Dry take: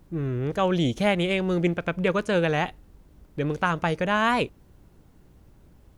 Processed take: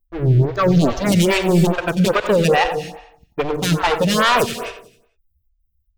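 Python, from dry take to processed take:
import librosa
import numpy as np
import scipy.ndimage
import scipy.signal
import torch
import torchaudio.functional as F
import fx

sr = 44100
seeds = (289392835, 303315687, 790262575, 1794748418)

p1 = fx.bin_expand(x, sr, power=2.0)
p2 = fx.peak_eq(p1, sr, hz=2800.0, db=6.0, octaves=0.52)
p3 = fx.leveller(p2, sr, passes=3)
p4 = fx.fixed_phaser(p3, sr, hz=2800.0, stages=6, at=(0.45, 1.12))
p5 = fx.level_steps(p4, sr, step_db=21, at=(2.12, 2.65))
p6 = fx.fold_sine(p5, sr, drive_db=6, ceiling_db=-12.0)
p7 = p6 + fx.echo_feedback(p6, sr, ms=89, feedback_pct=44, wet_db=-11.0, dry=0)
p8 = fx.rev_gated(p7, sr, seeds[0], gate_ms=300, shape='rising', drr_db=10.0)
p9 = fx.stagger_phaser(p8, sr, hz=2.4)
y = F.gain(torch.from_numpy(p9), 1.5).numpy()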